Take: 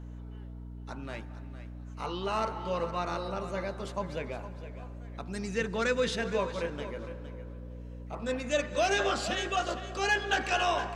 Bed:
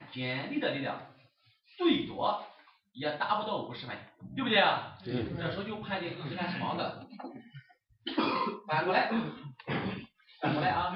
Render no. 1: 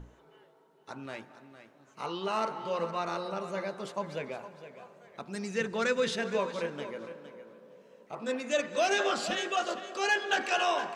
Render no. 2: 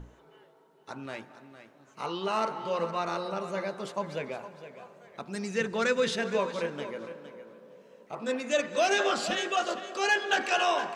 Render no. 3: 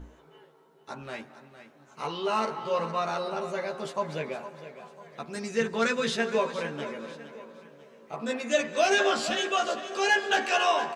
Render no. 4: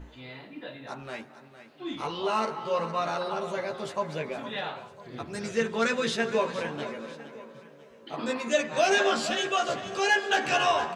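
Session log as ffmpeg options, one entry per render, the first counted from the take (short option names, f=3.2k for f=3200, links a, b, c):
-af "bandreject=f=60:t=h:w=6,bandreject=f=120:t=h:w=6,bandreject=f=180:t=h:w=6,bandreject=f=240:t=h:w=6,bandreject=f=300:t=h:w=6"
-af "volume=2dB"
-filter_complex "[0:a]asplit=2[a][b];[b]adelay=13,volume=-3dB[c];[a][c]amix=inputs=2:normalize=0,aecho=1:1:1006:0.0891"
-filter_complex "[1:a]volume=-9.5dB[a];[0:a][a]amix=inputs=2:normalize=0"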